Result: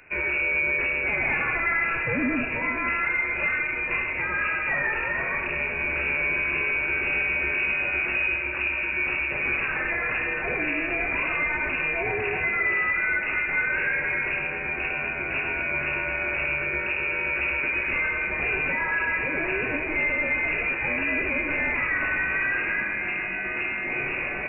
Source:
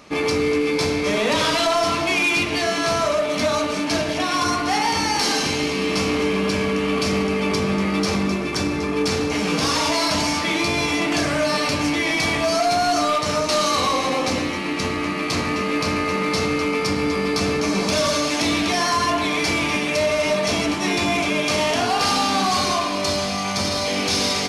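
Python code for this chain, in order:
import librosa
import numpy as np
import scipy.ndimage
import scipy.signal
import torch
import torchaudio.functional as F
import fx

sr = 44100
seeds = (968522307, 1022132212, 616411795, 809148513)

y = x + 10.0 ** (-11.0 / 20.0) * np.pad(x, (int(466 * sr / 1000.0), 0))[:len(x)]
y = fx.freq_invert(y, sr, carrier_hz=2700)
y = y * 10.0 ** (-5.0 / 20.0)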